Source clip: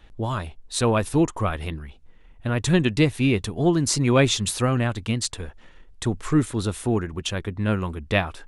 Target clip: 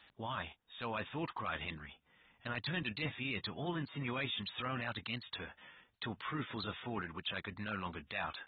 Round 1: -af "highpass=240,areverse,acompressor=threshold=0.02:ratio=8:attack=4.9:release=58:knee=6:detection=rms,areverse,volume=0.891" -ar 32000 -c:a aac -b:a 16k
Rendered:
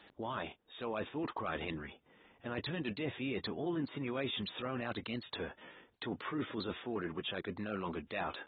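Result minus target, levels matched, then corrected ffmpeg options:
500 Hz band +5.0 dB
-af "highpass=240,equalizer=f=380:t=o:w=1.8:g=-14.5,areverse,acompressor=threshold=0.02:ratio=8:attack=4.9:release=58:knee=6:detection=rms,areverse,volume=0.891" -ar 32000 -c:a aac -b:a 16k

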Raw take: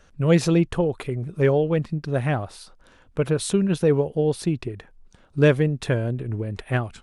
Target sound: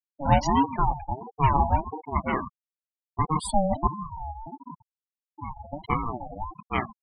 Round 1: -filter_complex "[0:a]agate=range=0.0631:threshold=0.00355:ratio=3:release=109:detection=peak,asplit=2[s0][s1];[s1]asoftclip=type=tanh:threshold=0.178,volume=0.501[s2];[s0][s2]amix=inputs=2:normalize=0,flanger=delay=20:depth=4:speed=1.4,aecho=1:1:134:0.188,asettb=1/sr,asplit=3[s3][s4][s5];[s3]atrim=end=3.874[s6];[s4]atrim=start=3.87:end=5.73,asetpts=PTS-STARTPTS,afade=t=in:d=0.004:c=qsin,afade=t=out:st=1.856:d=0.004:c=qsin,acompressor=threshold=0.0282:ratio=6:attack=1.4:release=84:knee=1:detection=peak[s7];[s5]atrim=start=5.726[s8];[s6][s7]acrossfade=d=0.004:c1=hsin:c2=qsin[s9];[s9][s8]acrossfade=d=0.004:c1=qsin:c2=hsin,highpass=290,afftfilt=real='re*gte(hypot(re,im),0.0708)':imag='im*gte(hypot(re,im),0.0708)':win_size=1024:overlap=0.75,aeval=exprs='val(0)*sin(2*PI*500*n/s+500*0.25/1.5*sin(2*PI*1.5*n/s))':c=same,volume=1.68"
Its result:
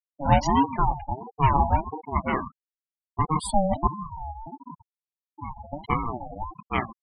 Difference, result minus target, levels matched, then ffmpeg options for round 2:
saturation: distortion -6 dB
-filter_complex "[0:a]agate=range=0.0631:threshold=0.00355:ratio=3:release=109:detection=peak,asplit=2[s0][s1];[s1]asoftclip=type=tanh:threshold=0.0841,volume=0.501[s2];[s0][s2]amix=inputs=2:normalize=0,flanger=delay=20:depth=4:speed=1.4,aecho=1:1:134:0.188,asettb=1/sr,asplit=3[s3][s4][s5];[s3]atrim=end=3.874[s6];[s4]atrim=start=3.87:end=5.73,asetpts=PTS-STARTPTS,afade=t=in:d=0.004:c=qsin,afade=t=out:st=1.856:d=0.004:c=qsin,acompressor=threshold=0.0282:ratio=6:attack=1.4:release=84:knee=1:detection=peak[s7];[s5]atrim=start=5.726[s8];[s6][s7]acrossfade=d=0.004:c1=hsin:c2=qsin[s9];[s9][s8]acrossfade=d=0.004:c1=qsin:c2=hsin,highpass=290,afftfilt=real='re*gte(hypot(re,im),0.0708)':imag='im*gte(hypot(re,im),0.0708)':win_size=1024:overlap=0.75,aeval=exprs='val(0)*sin(2*PI*500*n/s+500*0.25/1.5*sin(2*PI*1.5*n/s))':c=same,volume=1.68"

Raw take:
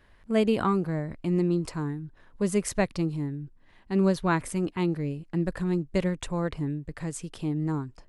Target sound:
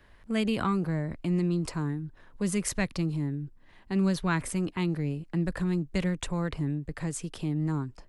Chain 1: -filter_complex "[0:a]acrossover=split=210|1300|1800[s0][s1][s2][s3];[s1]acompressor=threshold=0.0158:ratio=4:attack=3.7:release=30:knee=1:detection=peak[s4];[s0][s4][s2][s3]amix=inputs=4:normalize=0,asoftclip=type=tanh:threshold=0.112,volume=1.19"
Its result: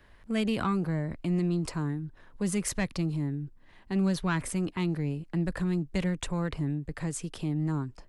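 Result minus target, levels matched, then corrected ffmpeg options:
saturation: distortion +16 dB
-filter_complex "[0:a]acrossover=split=210|1300|1800[s0][s1][s2][s3];[s1]acompressor=threshold=0.0158:ratio=4:attack=3.7:release=30:knee=1:detection=peak[s4];[s0][s4][s2][s3]amix=inputs=4:normalize=0,asoftclip=type=tanh:threshold=0.335,volume=1.19"

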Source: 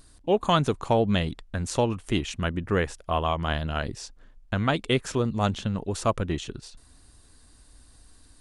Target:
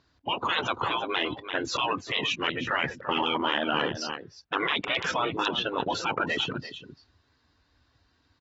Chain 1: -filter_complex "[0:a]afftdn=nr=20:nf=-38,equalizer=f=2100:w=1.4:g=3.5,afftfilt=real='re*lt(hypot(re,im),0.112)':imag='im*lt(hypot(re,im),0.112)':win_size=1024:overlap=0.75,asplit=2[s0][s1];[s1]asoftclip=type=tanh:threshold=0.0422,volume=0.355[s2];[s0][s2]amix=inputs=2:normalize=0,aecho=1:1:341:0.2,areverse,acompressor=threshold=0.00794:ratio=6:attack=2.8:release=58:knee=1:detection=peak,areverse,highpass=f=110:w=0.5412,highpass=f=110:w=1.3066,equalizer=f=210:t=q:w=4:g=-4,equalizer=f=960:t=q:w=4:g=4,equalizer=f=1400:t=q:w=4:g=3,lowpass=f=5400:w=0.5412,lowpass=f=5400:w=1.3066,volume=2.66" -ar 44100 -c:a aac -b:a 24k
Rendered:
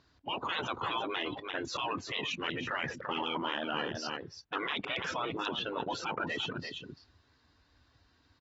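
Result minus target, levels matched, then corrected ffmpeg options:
compression: peak gain reduction +7.5 dB; saturation: distortion +8 dB
-filter_complex "[0:a]afftdn=nr=20:nf=-38,equalizer=f=2100:w=1.4:g=3.5,afftfilt=real='re*lt(hypot(re,im),0.112)':imag='im*lt(hypot(re,im),0.112)':win_size=1024:overlap=0.75,asplit=2[s0][s1];[s1]asoftclip=type=tanh:threshold=0.0944,volume=0.355[s2];[s0][s2]amix=inputs=2:normalize=0,aecho=1:1:341:0.2,areverse,acompressor=threshold=0.0237:ratio=6:attack=2.8:release=58:knee=1:detection=peak,areverse,highpass=f=110:w=0.5412,highpass=f=110:w=1.3066,equalizer=f=210:t=q:w=4:g=-4,equalizer=f=960:t=q:w=4:g=4,equalizer=f=1400:t=q:w=4:g=3,lowpass=f=5400:w=0.5412,lowpass=f=5400:w=1.3066,volume=2.66" -ar 44100 -c:a aac -b:a 24k

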